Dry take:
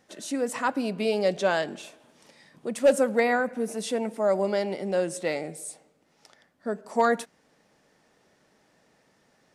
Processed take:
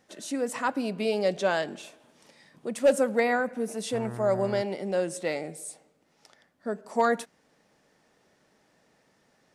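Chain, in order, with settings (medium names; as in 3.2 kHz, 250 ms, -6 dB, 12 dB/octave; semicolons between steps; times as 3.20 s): 3.92–4.61 s: mains buzz 120 Hz, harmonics 16, -36 dBFS -6 dB/octave; trim -1.5 dB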